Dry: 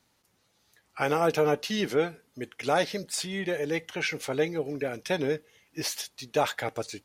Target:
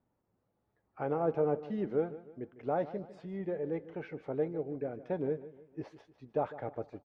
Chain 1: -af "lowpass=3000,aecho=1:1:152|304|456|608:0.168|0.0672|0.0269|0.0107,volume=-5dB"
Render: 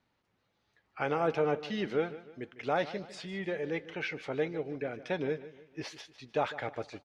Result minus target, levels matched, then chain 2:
4,000 Hz band +19.5 dB
-af "lowpass=800,aecho=1:1:152|304|456|608:0.168|0.0672|0.0269|0.0107,volume=-5dB"

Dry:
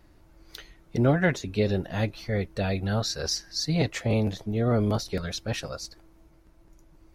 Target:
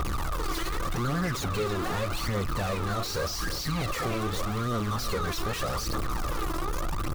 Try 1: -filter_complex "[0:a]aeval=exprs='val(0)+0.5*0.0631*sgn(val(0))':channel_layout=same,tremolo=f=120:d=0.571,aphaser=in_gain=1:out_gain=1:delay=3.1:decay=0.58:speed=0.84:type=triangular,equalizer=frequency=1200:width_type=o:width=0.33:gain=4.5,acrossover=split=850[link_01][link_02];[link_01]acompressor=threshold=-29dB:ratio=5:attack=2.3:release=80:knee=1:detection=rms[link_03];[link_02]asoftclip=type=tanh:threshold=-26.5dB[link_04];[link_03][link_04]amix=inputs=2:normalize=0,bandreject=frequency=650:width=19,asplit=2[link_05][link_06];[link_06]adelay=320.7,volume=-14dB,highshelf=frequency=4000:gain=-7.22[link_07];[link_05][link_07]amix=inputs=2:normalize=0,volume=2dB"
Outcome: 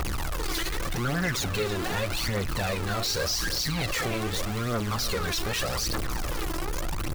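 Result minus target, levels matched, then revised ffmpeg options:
soft clipping: distortion −6 dB; 1,000 Hz band −4.0 dB
-filter_complex "[0:a]aeval=exprs='val(0)+0.5*0.0631*sgn(val(0))':channel_layout=same,tremolo=f=120:d=0.571,aphaser=in_gain=1:out_gain=1:delay=3.1:decay=0.58:speed=0.84:type=triangular,equalizer=frequency=1200:width_type=o:width=0.33:gain=16,acrossover=split=850[link_01][link_02];[link_01]acompressor=threshold=-29dB:ratio=5:attack=2.3:release=80:knee=1:detection=rms[link_03];[link_02]asoftclip=type=tanh:threshold=-35.5dB[link_04];[link_03][link_04]amix=inputs=2:normalize=0,bandreject=frequency=650:width=19,asplit=2[link_05][link_06];[link_06]adelay=320.7,volume=-14dB,highshelf=frequency=4000:gain=-7.22[link_07];[link_05][link_07]amix=inputs=2:normalize=0,volume=2dB"

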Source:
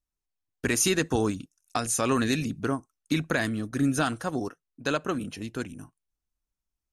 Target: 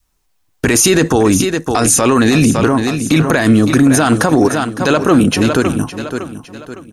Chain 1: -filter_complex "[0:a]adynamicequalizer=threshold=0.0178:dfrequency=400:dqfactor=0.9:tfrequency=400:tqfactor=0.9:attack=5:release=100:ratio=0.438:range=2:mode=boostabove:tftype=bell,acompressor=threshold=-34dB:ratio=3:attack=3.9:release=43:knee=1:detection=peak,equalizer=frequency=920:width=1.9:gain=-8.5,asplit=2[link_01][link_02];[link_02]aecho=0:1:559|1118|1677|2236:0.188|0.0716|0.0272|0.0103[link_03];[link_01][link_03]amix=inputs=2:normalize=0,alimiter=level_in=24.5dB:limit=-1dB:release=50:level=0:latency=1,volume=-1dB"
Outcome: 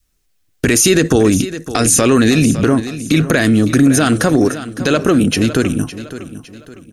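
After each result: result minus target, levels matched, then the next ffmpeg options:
downward compressor: peak gain reduction +7.5 dB; 1,000 Hz band −4.5 dB
-filter_complex "[0:a]adynamicequalizer=threshold=0.0178:dfrequency=400:dqfactor=0.9:tfrequency=400:tqfactor=0.9:attack=5:release=100:ratio=0.438:range=2:mode=boostabove:tftype=bell,acompressor=threshold=-23dB:ratio=3:attack=3.9:release=43:knee=1:detection=peak,equalizer=frequency=920:width=1.9:gain=-8.5,asplit=2[link_01][link_02];[link_02]aecho=0:1:559|1118|1677|2236:0.188|0.0716|0.0272|0.0103[link_03];[link_01][link_03]amix=inputs=2:normalize=0,alimiter=level_in=24.5dB:limit=-1dB:release=50:level=0:latency=1,volume=-1dB"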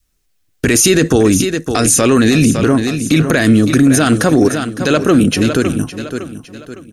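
1,000 Hz band −4.5 dB
-filter_complex "[0:a]adynamicequalizer=threshold=0.0178:dfrequency=400:dqfactor=0.9:tfrequency=400:tqfactor=0.9:attack=5:release=100:ratio=0.438:range=2:mode=boostabove:tftype=bell,acompressor=threshold=-23dB:ratio=3:attack=3.9:release=43:knee=1:detection=peak,equalizer=frequency=920:width=1.9:gain=3,asplit=2[link_01][link_02];[link_02]aecho=0:1:559|1118|1677|2236:0.188|0.0716|0.0272|0.0103[link_03];[link_01][link_03]amix=inputs=2:normalize=0,alimiter=level_in=24.5dB:limit=-1dB:release=50:level=0:latency=1,volume=-1dB"

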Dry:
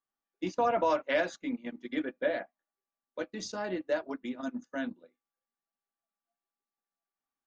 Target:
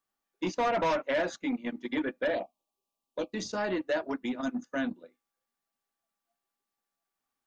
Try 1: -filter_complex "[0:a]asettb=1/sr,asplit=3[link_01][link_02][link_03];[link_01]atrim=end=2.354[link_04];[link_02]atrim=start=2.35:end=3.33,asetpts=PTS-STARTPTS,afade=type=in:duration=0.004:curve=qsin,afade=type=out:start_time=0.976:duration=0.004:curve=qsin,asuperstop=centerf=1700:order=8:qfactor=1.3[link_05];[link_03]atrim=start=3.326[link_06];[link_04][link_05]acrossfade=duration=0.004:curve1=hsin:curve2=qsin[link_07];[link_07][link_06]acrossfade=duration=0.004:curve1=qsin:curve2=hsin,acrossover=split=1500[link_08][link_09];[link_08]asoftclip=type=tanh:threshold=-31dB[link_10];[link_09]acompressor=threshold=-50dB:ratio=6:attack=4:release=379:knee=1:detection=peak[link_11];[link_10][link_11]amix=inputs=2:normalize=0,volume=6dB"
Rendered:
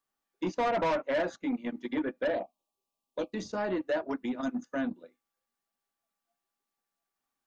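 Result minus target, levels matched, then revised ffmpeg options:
downward compressor: peak gain reduction +7.5 dB
-filter_complex "[0:a]asettb=1/sr,asplit=3[link_01][link_02][link_03];[link_01]atrim=end=2.354[link_04];[link_02]atrim=start=2.35:end=3.33,asetpts=PTS-STARTPTS,afade=type=in:duration=0.004:curve=qsin,afade=type=out:start_time=0.976:duration=0.004:curve=qsin,asuperstop=centerf=1700:order=8:qfactor=1.3[link_05];[link_03]atrim=start=3.326[link_06];[link_04][link_05]acrossfade=duration=0.004:curve1=hsin:curve2=qsin[link_07];[link_07][link_06]acrossfade=duration=0.004:curve1=qsin:curve2=hsin,acrossover=split=1500[link_08][link_09];[link_08]asoftclip=type=tanh:threshold=-31dB[link_10];[link_09]acompressor=threshold=-41dB:ratio=6:attack=4:release=379:knee=1:detection=peak[link_11];[link_10][link_11]amix=inputs=2:normalize=0,volume=6dB"

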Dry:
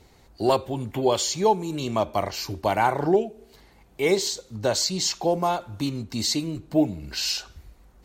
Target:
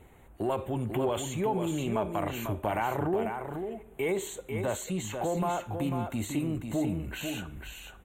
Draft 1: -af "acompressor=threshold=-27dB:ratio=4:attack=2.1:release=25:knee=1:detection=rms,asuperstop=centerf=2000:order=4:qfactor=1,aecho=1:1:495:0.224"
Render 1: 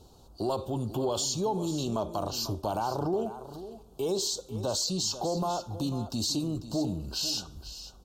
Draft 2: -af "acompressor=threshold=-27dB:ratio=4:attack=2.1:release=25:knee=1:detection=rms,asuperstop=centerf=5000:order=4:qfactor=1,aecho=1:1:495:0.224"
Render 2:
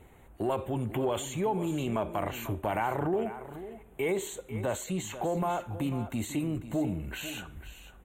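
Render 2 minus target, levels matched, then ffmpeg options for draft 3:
echo-to-direct −6.5 dB
-af "acompressor=threshold=-27dB:ratio=4:attack=2.1:release=25:knee=1:detection=rms,asuperstop=centerf=5000:order=4:qfactor=1,aecho=1:1:495:0.473"

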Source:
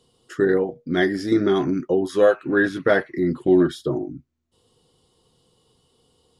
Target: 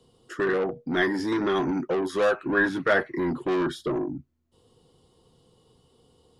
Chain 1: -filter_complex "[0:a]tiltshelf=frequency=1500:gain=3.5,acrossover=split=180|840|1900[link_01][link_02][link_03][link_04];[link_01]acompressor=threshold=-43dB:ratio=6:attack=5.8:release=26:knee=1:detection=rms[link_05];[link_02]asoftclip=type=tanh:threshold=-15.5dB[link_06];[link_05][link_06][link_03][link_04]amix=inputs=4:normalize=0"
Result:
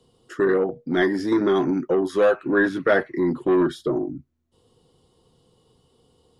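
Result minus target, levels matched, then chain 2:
soft clipping: distortion −6 dB
-filter_complex "[0:a]tiltshelf=frequency=1500:gain=3.5,acrossover=split=180|840|1900[link_01][link_02][link_03][link_04];[link_01]acompressor=threshold=-43dB:ratio=6:attack=5.8:release=26:knee=1:detection=rms[link_05];[link_02]asoftclip=type=tanh:threshold=-24.5dB[link_06];[link_05][link_06][link_03][link_04]amix=inputs=4:normalize=0"

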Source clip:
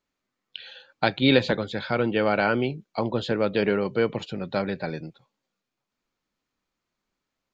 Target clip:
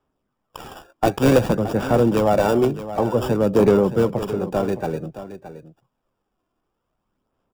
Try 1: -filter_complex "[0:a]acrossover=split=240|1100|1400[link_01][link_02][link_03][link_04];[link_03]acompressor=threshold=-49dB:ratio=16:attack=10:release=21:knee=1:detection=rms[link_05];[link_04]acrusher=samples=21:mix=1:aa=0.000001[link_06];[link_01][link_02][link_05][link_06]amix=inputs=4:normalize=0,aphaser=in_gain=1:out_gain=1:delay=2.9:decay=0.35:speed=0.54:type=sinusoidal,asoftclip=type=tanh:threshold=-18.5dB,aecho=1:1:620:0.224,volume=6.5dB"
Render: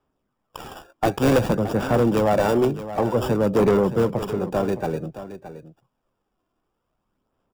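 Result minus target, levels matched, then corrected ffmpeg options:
soft clipping: distortion +8 dB
-filter_complex "[0:a]acrossover=split=240|1100|1400[link_01][link_02][link_03][link_04];[link_03]acompressor=threshold=-49dB:ratio=16:attack=10:release=21:knee=1:detection=rms[link_05];[link_04]acrusher=samples=21:mix=1:aa=0.000001[link_06];[link_01][link_02][link_05][link_06]amix=inputs=4:normalize=0,aphaser=in_gain=1:out_gain=1:delay=2.9:decay=0.35:speed=0.54:type=sinusoidal,asoftclip=type=tanh:threshold=-12dB,aecho=1:1:620:0.224,volume=6.5dB"

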